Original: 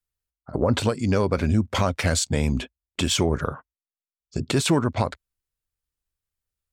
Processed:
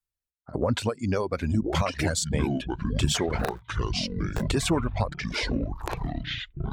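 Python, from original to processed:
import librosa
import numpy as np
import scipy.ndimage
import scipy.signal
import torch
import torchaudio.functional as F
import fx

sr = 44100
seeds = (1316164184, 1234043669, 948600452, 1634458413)

y = fx.cycle_switch(x, sr, every=2, mode='inverted', at=(3.37, 4.44), fade=0.02)
y = fx.echo_pitch(y, sr, ms=710, semitones=-7, count=3, db_per_echo=-3.0)
y = fx.dereverb_blind(y, sr, rt60_s=1.2)
y = F.gain(torch.from_numpy(y), -3.5).numpy()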